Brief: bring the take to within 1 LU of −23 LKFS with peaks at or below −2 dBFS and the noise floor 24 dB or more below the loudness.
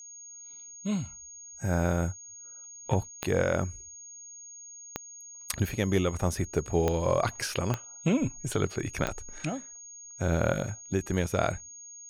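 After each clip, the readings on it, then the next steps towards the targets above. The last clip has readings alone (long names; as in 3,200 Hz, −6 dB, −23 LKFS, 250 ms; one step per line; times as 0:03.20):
number of clicks 5; interfering tone 6,600 Hz; level of the tone −44 dBFS; integrated loudness −30.0 LKFS; sample peak −11.5 dBFS; target loudness −23.0 LKFS
→ click removal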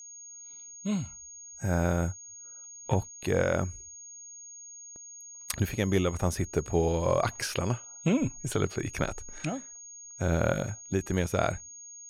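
number of clicks 0; interfering tone 6,600 Hz; level of the tone −44 dBFS
→ notch filter 6,600 Hz, Q 30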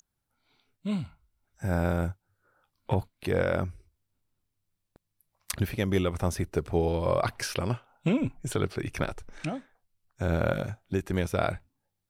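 interfering tone none found; integrated loudness −30.5 LKFS; sample peak −12.0 dBFS; target loudness −23.0 LKFS
→ level +7.5 dB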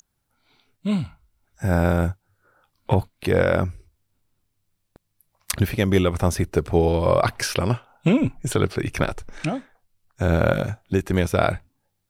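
integrated loudness −23.0 LKFS; sample peak −4.5 dBFS; background noise floor −75 dBFS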